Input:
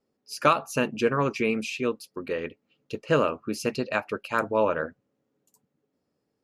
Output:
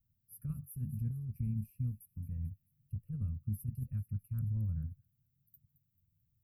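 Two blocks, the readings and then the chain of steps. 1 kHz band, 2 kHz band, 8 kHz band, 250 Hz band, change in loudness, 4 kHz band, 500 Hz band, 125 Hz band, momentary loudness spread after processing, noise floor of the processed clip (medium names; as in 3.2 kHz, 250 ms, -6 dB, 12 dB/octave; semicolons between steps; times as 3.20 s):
under -40 dB, under -40 dB, under -15 dB, -14.0 dB, -13.0 dB, under -40 dB, under -40 dB, +2.5 dB, 9 LU, -80 dBFS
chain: inverse Chebyshev band-stop 360–7200 Hz, stop band 60 dB; compressor with a negative ratio -48 dBFS, ratio -1; feedback echo behind a high-pass 220 ms, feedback 51%, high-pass 4 kHz, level -13 dB; trim +13.5 dB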